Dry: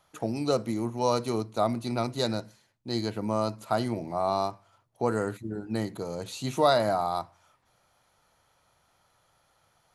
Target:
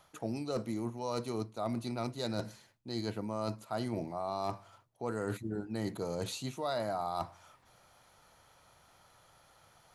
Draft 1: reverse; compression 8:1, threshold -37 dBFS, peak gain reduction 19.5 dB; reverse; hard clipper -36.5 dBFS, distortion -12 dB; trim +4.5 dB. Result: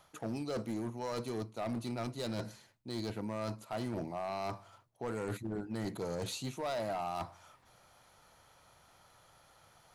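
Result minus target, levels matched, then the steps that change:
hard clipper: distortion +19 dB
change: hard clipper -29 dBFS, distortion -31 dB

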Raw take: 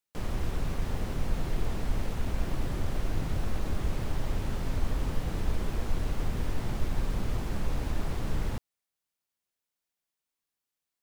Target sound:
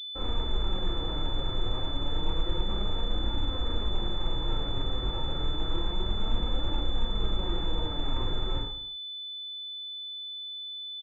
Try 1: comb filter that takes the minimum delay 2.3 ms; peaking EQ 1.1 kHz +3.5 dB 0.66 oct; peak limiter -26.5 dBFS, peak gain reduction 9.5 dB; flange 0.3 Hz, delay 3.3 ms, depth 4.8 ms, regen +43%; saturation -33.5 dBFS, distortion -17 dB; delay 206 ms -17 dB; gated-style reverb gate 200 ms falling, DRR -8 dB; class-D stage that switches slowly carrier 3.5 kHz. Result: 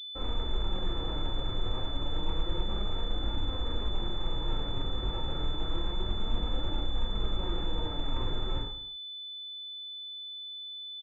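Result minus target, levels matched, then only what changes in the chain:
saturation: distortion +16 dB
change: saturation -23.5 dBFS, distortion -33 dB

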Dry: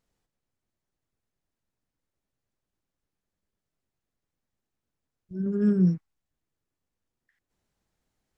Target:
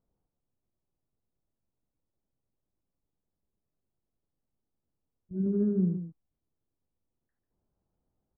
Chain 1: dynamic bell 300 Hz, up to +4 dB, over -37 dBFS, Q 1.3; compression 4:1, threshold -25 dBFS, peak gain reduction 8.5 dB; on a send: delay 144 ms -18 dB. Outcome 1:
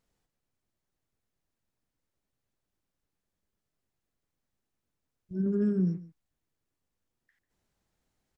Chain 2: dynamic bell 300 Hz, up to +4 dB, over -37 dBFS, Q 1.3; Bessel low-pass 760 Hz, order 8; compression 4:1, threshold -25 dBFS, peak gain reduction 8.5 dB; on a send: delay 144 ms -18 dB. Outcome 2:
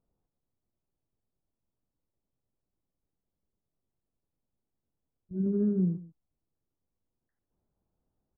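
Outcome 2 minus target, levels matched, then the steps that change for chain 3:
echo-to-direct -8 dB
change: delay 144 ms -10 dB

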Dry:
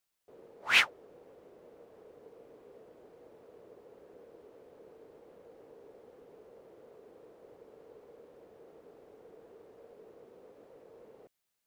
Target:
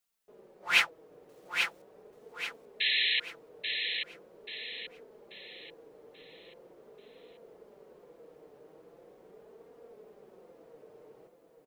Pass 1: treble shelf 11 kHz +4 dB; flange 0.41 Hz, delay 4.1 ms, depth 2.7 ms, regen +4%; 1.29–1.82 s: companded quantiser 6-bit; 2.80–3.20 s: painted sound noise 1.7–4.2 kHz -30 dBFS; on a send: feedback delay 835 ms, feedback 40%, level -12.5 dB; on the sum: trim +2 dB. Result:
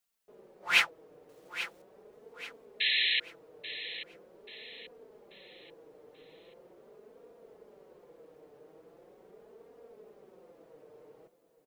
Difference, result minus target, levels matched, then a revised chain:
echo-to-direct -7 dB
treble shelf 11 kHz +4 dB; flange 0.41 Hz, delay 4.1 ms, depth 2.7 ms, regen +4%; 1.29–1.82 s: companded quantiser 6-bit; 2.80–3.20 s: painted sound noise 1.7–4.2 kHz -30 dBFS; on a send: feedback delay 835 ms, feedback 40%, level -5.5 dB; on the sum: trim +2 dB

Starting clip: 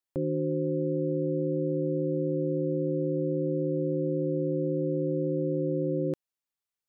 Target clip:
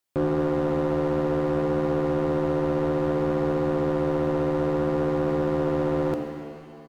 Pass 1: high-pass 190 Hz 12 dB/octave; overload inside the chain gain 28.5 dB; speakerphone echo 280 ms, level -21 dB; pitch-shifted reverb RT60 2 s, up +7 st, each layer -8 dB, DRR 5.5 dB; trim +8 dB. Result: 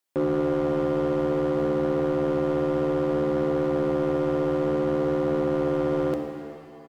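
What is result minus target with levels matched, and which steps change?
125 Hz band -3.0 dB
change: high-pass 52 Hz 12 dB/octave

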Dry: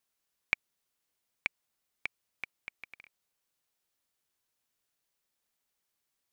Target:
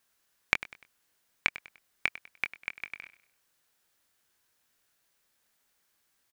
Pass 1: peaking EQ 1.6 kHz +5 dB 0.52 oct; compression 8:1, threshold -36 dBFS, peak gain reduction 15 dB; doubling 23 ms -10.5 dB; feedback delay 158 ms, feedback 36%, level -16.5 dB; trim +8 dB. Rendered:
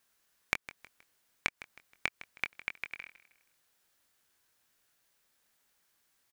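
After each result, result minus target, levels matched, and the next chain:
echo 59 ms late; compression: peak gain reduction +6.5 dB
peaking EQ 1.6 kHz +5 dB 0.52 oct; compression 8:1, threshold -36 dBFS, peak gain reduction 15 dB; doubling 23 ms -10.5 dB; feedback delay 99 ms, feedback 36%, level -16.5 dB; trim +8 dB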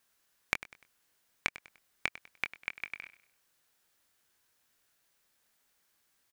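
compression: peak gain reduction +6.5 dB
peaking EQ 1.6 kHz +5 dB 0.52 oct; compression 8:1, threshold -28.5 dBFS, peak gain reduction 8.5 dB; doubling 23 ms -10.5 dB; feedback delay 99 ms, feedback 36%, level -16.5 dB; trim +8 dB

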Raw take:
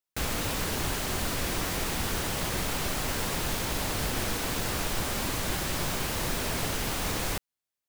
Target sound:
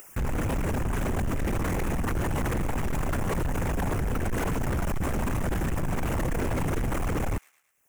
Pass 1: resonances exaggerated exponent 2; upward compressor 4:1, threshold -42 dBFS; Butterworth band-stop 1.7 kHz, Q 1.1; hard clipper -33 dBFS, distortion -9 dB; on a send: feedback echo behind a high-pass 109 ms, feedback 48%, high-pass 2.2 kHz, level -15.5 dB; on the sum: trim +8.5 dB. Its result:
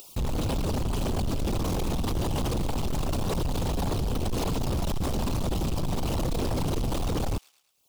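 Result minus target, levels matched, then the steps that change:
4 kHz band +8.0 dB
change: Butterworth band-stop 4 kHz, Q 1.1

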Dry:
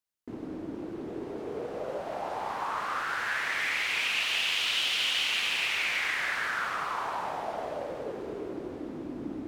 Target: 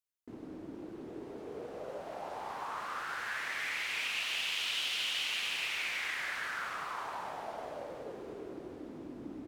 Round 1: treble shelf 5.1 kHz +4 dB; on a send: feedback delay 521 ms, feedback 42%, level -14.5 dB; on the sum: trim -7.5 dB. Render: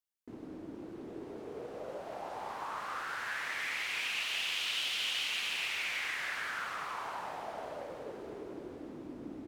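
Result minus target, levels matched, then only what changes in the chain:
echo 190 ms late
change: feedback delay 331 ms, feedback 42%, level -14.5 dB

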